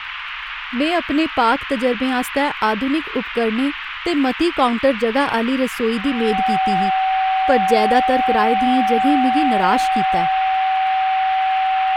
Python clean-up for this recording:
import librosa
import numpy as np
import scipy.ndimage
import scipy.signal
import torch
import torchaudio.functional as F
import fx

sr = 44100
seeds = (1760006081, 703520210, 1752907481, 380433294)

y = fx.fix_declick_ar(x, sr, threshold=6.5)
y = fx.notch(y, sr, hz=760.0, q=30.0)
y = fx.noise_reduce(y, sr, print_start_s=0.0, print_end_s=0.5, reduce_db=30.0)